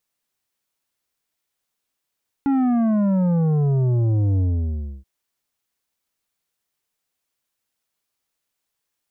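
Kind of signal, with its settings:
bass drop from 280 Hz, over 2.58 s, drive 9 dB, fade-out 0.65 s, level −17 dB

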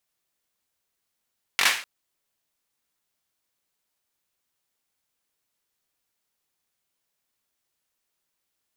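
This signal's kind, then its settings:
synth clap length 0.25 s, bursts 4, apart 21 ms, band 2,100 Hz, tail 0.41 s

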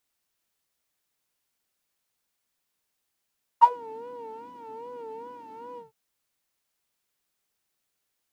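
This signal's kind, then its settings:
subtractive patch with vibrato A#5, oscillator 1 triangle, interval −12 semitones, detune 4 cents, oscillator 2 level −7 dB, noise −10.5 dB, filter bandpass, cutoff 100 Hz, Q 5.7, filter envelope 3.5 octaves, filter decay 0.17 s, attack 21 ms, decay 0.07 s, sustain −12.5 dB, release 0.14 s, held 2.17 s, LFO 2.5 Hz, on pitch 99 cents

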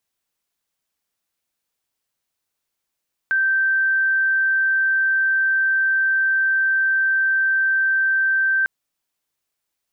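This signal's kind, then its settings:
tone sine 1,560 Hz −15.5 dBFS 5.35 s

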